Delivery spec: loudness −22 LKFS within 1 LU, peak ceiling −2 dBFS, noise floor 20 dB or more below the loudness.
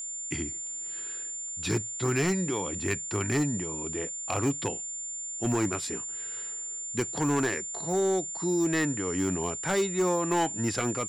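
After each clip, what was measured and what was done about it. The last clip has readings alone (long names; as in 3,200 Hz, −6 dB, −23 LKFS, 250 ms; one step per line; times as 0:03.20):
share of clipped samples 0.9%; peaks flattened at −20.5 dBFS; interfering tone 7,200 Hz; level of the tone −34 dBFS; integrated loudness −29.0 LKFS; sample peak −20.5 dBFS; target loudness −22.0 LKFS
→ clipped peaks rebuilt −20.5 dBFS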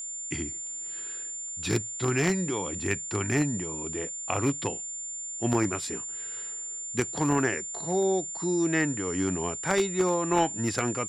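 share of clipped samples 0.0%; interfering tone 7,200 Hz; level of the tone −34 dBFS
→ notch filter 7,200 Hz, Q 30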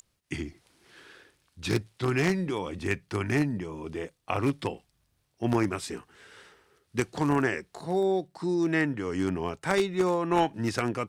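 interfering tone none found; integrated loudness −29.0 LKFS; sample peak −11.0 dBFS; target loudness −22.0 LKFS
→ level +7 dB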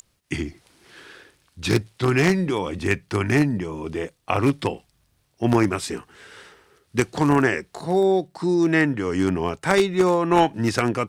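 integrated loudness −22.0 LKFS; sample peak −4.0 dBFS; background noise floor −67 dBFS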